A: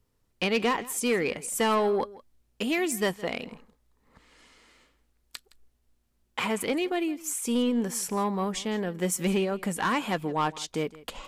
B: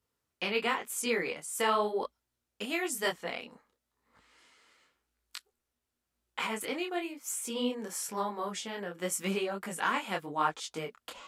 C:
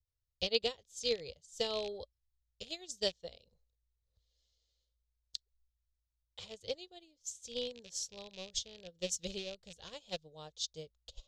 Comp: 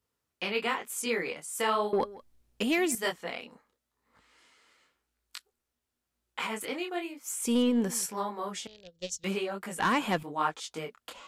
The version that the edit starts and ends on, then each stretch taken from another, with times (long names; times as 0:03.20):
B
0:01.93–0:02.95: punch in from A
0:07.40–0:08.06: punch in from A
0:08.67–0:09.24: punch in from C
0:09.79–0:10.23: punch in from A